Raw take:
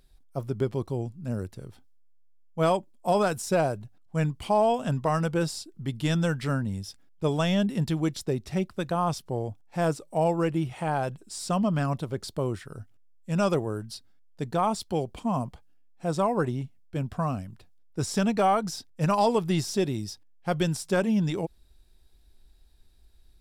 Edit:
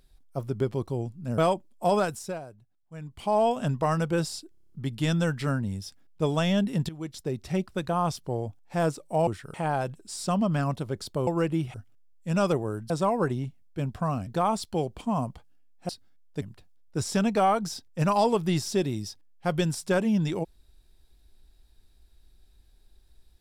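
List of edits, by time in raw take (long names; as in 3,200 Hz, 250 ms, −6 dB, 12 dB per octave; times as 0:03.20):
0:01.38–0:02.61: remove
0:03.20–0:04.66: duck −15.5 dB, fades 0.43 s
0:05.73: stutter 0.03 s, 8 plays
0:07.91–0:08.52: fade in, from −16.5 dB
0:10.29–0:10.76: swap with 0:12.49–0:12.76
0:13.92–0:14.45: swap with 0:16.07–0:17.44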